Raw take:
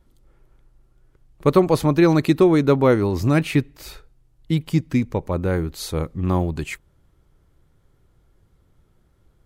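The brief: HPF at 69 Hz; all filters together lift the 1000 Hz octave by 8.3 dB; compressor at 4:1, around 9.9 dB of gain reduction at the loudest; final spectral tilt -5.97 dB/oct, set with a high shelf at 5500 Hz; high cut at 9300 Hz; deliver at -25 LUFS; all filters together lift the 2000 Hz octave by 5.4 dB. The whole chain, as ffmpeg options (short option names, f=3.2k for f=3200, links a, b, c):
-af "highpass=69,lowpass=9.3k,equalizer=f=1k:t=o:g=9,equalizer=f=2k:t=o:g=4.5,highshelf=f=5.5k:g=-4.5,acompressor=threshold=-20dB:ratio=4,volume=0.5dB"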